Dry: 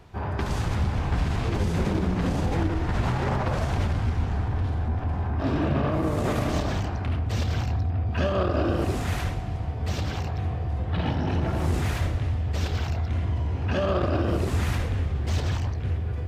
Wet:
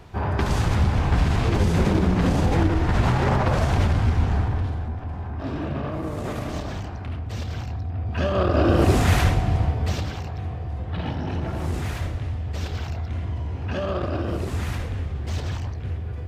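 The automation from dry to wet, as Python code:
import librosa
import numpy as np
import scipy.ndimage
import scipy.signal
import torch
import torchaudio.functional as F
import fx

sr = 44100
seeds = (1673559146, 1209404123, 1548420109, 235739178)

y = fx.gain(x, sr, db=fx.line((4.37, 5.0), (4.98, -4.0), (7.81, -4.0), (8.93, 9.0), (9.62, 9.0), (10.16, -2.0)))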